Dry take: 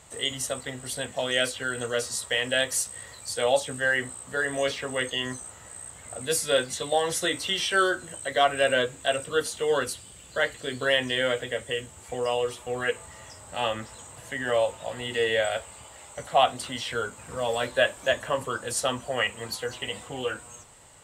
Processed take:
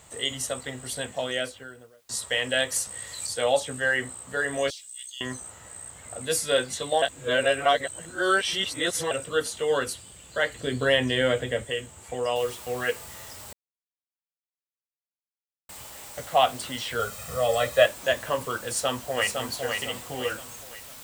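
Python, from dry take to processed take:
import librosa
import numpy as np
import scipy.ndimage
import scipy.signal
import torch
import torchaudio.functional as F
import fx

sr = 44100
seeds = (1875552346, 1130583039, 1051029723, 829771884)

y = fx.studio_fade_out(x, sr, start_s=1.03, length_s=1.06)
y = fx.band_squash(y, sr, depth_pct=100, at=(2.76, 3.27))
y = fx.cheby2_highpass(y, sr, hz=920.0, order=4, stop_db=70, at=(4.7, 5.21))
y = fx.low_shelf(y, sr, hz=340.0, db=9.5, at=(10.55, 11.65))
y = fx.noise_floor_step(y, sr, seeds[0], at_s=12.36, before_db=-68, after_db=-45, tilt_db=0.0)
y = fx.comb(y, sr, ms=1.6, depth=0.88, at=(16.99, 17.86))
y = fx.echo_throw(y, sr, start_s=18.65, length_s=0.71, ms=510, feedback_pct=40, wet_db=-4.5)
y = fx.edit(y, sr, fx.reverse_span(start_s=7.02, length_s=2.09),
    fx.silence(start_s=13.53, length_s=2.16), tone=tone)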